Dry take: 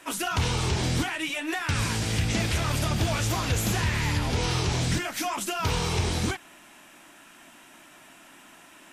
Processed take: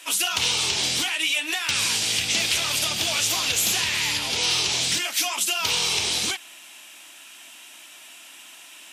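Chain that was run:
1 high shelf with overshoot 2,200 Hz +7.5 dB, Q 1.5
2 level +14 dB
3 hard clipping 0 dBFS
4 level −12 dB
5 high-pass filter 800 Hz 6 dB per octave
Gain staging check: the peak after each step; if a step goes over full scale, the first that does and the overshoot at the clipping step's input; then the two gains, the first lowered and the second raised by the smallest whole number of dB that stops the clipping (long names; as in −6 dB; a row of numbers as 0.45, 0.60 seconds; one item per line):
−8.5, +5.5, 0.0, −12.0, −10.0 dBFS
step 2, 5.5 dB
step 2 +8 dB, step 4 −6 dB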